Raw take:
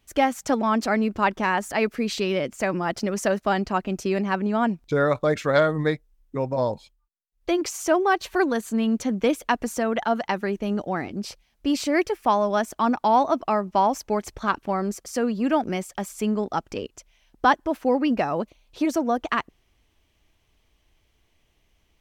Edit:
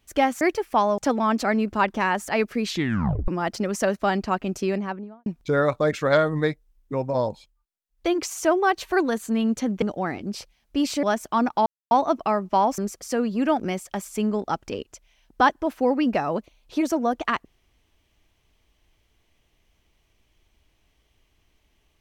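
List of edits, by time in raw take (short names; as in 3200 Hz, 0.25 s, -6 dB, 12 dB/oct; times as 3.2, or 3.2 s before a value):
2.11 tape stop 0.60 s
4.03–4.69 studio fade out
9.25–10.72 cut
11.93–12.5 move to 0.41
13.13 insert silence 0.25 s
14–14.82 cut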